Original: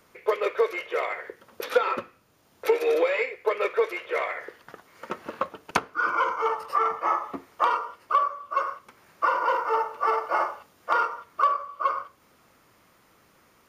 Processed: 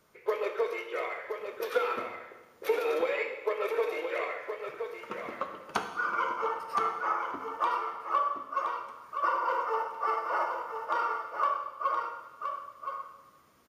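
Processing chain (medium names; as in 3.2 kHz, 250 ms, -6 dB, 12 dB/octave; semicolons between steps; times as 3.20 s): coarse spectral quantiser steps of 15 dB; delay 1020 ms -7 dB; plate-style reverb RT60 1.2 s, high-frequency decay 0.9×, DRR 4.5 dB; trim -6.5 dB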